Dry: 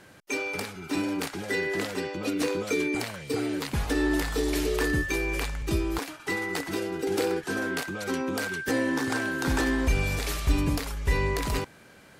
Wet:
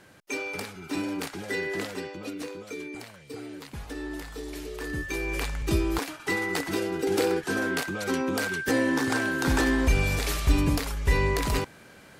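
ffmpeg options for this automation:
-af "volume=10.5dB,afade=t=out:st=1.79:d=0.72:silence=0.375837,afade=t=in:st=4.78:d=0.9:silence=0.237137"

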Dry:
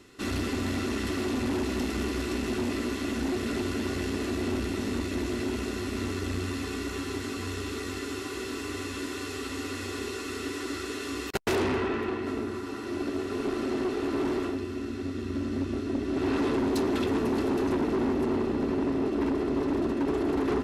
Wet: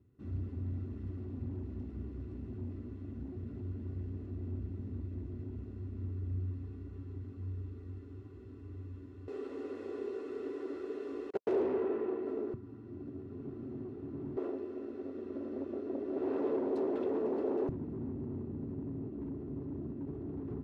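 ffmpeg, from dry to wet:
-af "asetnsamples=n=441:p=0,asendcmd='9.28 bandpass f 460;12.54 bandpass f 130;14.37 bandpass f 500;17.69 bandpass f 120',bandpass=f=100:t=q:w=2.4:csg=0"

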